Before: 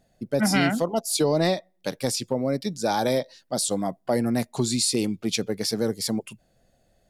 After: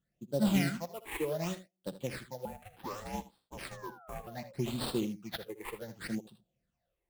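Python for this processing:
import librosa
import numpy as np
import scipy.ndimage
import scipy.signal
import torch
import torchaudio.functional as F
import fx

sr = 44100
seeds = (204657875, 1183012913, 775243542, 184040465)

p1 = scipy.signal.sosfilt(scipy.signal.butter(2, 47.0, 'highpass', fs=sr, output='sos'), x)
p2 = p1 + 0.37 * np.pad(p1, (int(5.7 * sr / 1000.0), 0))[:len(p1)]
p3 = fx.sample_hold(p2, sr, seeds[0], rate_hz=6400.0, jitter_pct=20)
p4 = fx.phaser_stages(p3, sr, stages=8, low_hz=180.0, high_hz=2100.0, hz=0.67, feedback_pct=35)
p5 = fx.spec_paint(p4, sr, seeds[1], shape='fall', start_s=3.64, length_s=0.89, low_hz=520.0, high_hz=1700.0, level_db=-37.0)
p6 = fx.ring_mod(p5, sr, carrier_hz=320.0, at=(2.45, 4.27))
p7 = p6 + fx.room_early_taps(p6, sr, ms=(62, 78), db=(-15.5, -11.0), dry=0)
p8 = fx.upward_expand(p7, sr, threshold_db=-36.0, expansion=1.5)
y = F.gain(torch.from_numpy(p8), -7.0).numpy()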